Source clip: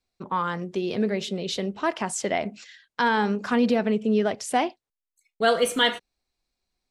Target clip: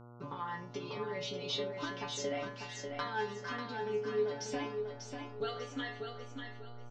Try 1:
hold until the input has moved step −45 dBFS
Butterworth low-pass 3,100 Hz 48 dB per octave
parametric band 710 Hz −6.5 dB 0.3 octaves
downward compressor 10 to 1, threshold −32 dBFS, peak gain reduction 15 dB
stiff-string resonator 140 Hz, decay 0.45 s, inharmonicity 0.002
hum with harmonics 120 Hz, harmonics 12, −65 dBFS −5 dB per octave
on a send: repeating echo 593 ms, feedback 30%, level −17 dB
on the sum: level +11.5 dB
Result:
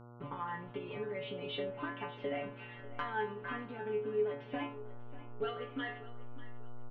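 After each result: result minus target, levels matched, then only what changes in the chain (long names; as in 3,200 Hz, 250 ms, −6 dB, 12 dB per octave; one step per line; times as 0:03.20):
hold until the input has moved: distortion +13 dB; echo-to-direct −11 dB; 4,000 Hz band −5.5 dB
change: hold until the input has moved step −56.5 dBFS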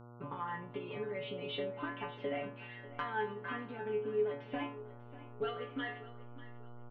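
echo-to-direct −11 dB; 4,000 Hz band −5.5 dB
change: repeating echo 593 ms, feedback 30%, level −6 dB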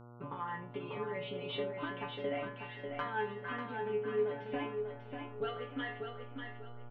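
4,000 Hz band −5.5 dB
change: Butterworth low-pass 6,300 Hz 48 dB per octave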